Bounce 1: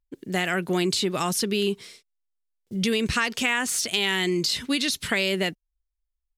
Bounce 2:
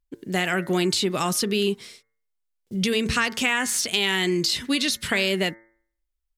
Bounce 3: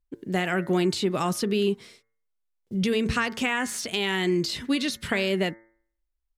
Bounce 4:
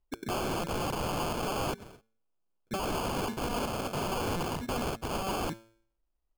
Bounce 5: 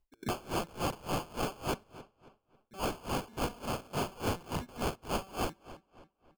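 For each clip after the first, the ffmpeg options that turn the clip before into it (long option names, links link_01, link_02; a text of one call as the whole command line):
ffmpeg -i in.wav -af "bandreject=frequency=112.6:width_type=h:width=4,bandreject=frequency=225.2:width_type=h:width=4,bandreject=frequency=337.8:width_type=h:width=4,bandreject=frequency=450.4:width_type=h:width=4,bandreject=frequency=563:width_type=h:width=4,bandreject=frequency=675.6:width_type=h:width=4,bandreject=frequency=788.2:width_type=h:width=4,bandreject=frequency=900.8:width_type=h:width=4,bandreject=frequency=1013.4:width_type=h:width=4,bandreject=frequency=1126:width_type=h:width=4,bandreject=frequency=1238.6:width_type=h:width=4,bandreject=frequency=1351.2:width_type=h:width=4,bandreject=frequency=1463.8:width_type=h:width=4,bandreject=frequency=1576.4:width_type=h:width=4,bandreject=frequency=1689:width_type=h:width=4,bandreject=frequency=1801.6:width_type=h:width=4,bandreject=frequency=1914.2:width_type=h:width=4,bandreject=frequency=2026.8:width_type=h:width=4,bandreject=frequency=2139.4:width_type=h:width=4,volume=1.5dB" out.wav
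ffmpeg -i in.wav -af "highshelf=frequency=2200:gain=-9" out.wav
ffmpeg -i in.wav -af "acrusher=samples=23:mix=1:aa=0.000001,aeval=exprs='(mod(22.4*val(0)+1,2)-1)/22.4':channel_layout=same" out.wav
ffmpeg -i in.wav -filter_complex "[0:a]asplit=2[link_01][link_02];[link_02]adelay=272,lowpass=frequency=4800:poles=1,volume=-16dB,asplit=2[link_03][link_04];[link_04]adelay=272,lowpass=frequency=4800:poles=1,volume=0.43,asplit=2[link_05][link_06];[link_06]adelay=272,lowpass=frequency=4800:poles=1,volume=0.43,asplit=2[link_07][link_08];[link_08]adelay=272,lowpass=frequency=4800:poles=1,volume=0.43[link_09];[link_01][link_03][link_05][link_07][link_09]amix=inputs=5:normalize=0,aeval=exprs='val(0)*pow(10,-24*(0.5-0.5*cos(2*PI*3.5*n/s))/20)':channel_layout=same,volume=2dB" out.wav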